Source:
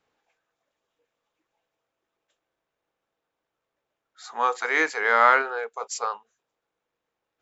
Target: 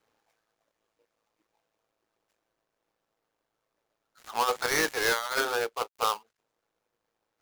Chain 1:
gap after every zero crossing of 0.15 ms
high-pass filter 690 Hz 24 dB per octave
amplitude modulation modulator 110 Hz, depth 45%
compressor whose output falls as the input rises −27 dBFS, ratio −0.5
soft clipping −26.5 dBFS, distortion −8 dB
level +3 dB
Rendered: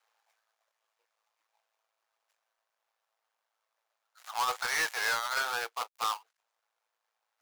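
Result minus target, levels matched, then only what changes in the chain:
500 Hz band −9.5 dB; soft clipping: distortion +9 dB
change: soft clipping −16.5 dBFS, distortion −17 dB
remove: high-pass filter 690 Hz 24 dB per octave

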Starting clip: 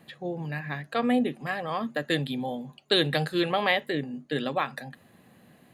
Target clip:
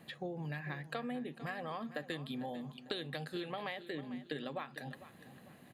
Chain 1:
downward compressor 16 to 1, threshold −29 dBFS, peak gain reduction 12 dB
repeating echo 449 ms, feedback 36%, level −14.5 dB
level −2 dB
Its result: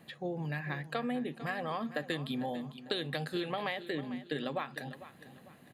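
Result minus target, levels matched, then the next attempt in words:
downward compressor: peak gain reduction −5.5 dB
downward compressor 16 to 1, threshold −35 dBFS, peak gain reduction 18 dB
repeating echo 449 ms, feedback 36%, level −14.5 dB
level −2 dB

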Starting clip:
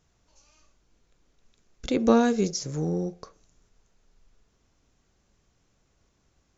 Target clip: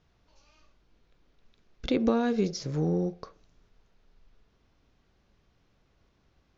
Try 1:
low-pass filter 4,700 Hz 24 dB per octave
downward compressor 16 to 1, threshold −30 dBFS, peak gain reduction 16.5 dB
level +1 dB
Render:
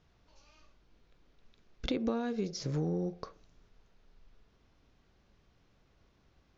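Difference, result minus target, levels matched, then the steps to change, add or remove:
downward compressor: peak gain reduction +8 dB
change: downward compressor 16 to 1, threshold −21.5 dBFS, peak gain reduction 9 dB

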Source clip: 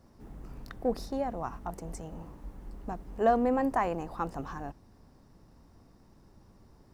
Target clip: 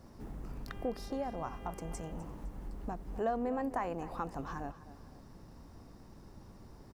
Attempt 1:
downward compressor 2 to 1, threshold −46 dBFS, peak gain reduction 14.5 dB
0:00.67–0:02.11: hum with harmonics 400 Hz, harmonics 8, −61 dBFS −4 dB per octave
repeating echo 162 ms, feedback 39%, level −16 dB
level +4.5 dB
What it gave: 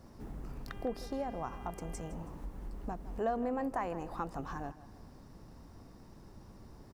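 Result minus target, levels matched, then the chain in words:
echo 92 ms early
downward compressor 2 to 1, threshold −46 dBFS, peak gain reduction 14.5 dB
0:00.67–0:02.11: hum with harmonics 400 Hz, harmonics 8, −61 dBFS −4 dB per octave
repeating echo 254 ms, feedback 39%, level −16 dB
level +4.5 dB

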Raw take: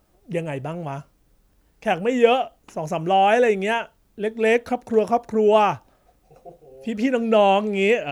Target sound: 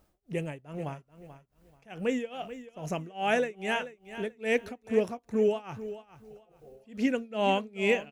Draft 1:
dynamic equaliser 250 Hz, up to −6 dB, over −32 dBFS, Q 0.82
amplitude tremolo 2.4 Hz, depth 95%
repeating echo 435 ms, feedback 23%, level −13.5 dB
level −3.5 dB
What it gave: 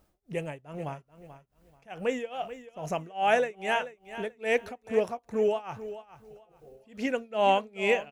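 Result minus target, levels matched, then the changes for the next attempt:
250 Hz band −5.5 dB
change: dynamic equaliser 750 Hz, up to −6 dB, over −32 dBFS, Q 0.82

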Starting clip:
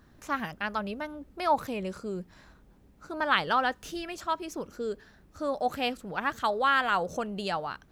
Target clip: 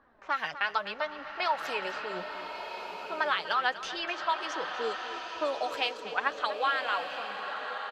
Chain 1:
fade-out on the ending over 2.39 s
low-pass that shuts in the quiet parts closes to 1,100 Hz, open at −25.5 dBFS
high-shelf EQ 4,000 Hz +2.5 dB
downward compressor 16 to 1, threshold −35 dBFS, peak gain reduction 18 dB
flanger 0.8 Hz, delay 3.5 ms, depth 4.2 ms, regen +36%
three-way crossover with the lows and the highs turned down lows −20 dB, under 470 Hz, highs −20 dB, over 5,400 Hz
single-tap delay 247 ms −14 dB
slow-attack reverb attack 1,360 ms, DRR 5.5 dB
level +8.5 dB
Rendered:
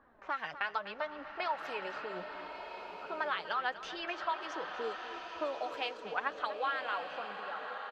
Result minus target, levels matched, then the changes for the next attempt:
8,000 Hz band −4.5 dB; downward compressor: peak gain reduction +4.5 dB
change: high-shelf EQ 4,000 Hz +13 dB
change: downward compressor 16 to 1, threshold −28.5 dBFS, peak gain reduction 13.5 dB

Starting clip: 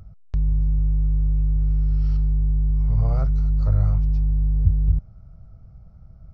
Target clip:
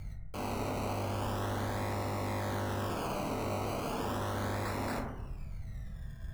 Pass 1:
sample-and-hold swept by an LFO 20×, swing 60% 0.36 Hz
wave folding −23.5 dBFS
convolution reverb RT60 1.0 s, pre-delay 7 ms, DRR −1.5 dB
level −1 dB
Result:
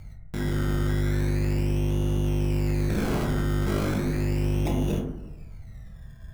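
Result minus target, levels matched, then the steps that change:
wave folding: distortion −6 dB
change: wave folding −34 dBFS

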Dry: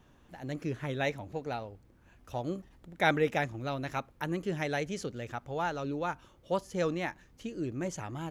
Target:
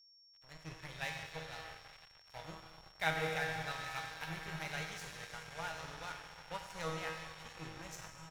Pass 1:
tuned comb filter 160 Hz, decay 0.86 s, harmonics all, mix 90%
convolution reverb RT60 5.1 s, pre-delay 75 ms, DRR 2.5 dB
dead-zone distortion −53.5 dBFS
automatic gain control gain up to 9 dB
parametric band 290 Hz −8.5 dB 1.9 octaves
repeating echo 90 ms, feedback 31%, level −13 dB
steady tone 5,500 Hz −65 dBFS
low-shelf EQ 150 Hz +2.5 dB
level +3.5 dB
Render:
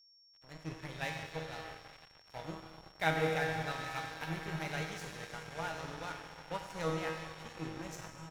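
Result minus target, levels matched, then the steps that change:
250 Hz band +4.5 dB
change: parametric band 290 Hz −19.5 dB 1.9 octaves

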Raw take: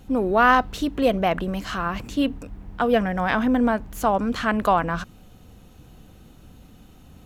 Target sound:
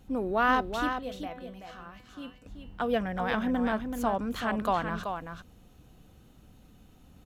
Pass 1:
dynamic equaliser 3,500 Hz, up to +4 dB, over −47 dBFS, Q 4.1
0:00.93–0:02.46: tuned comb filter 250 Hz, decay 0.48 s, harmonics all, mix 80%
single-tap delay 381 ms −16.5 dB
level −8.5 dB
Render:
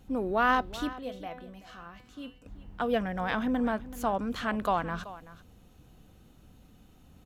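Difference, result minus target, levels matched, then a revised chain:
echo-to-direct −9.5 dB
dynamic equaliser 3,500 Hz, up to +4 dB, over −47 dBFS, Q 4.1
0:00.93–0:02.46: tuned comb filter 250 Hz, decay 0.48 s, harmonics all, mix 80%
single-tap delay 381 ms −7 dB
level −8.5 dB

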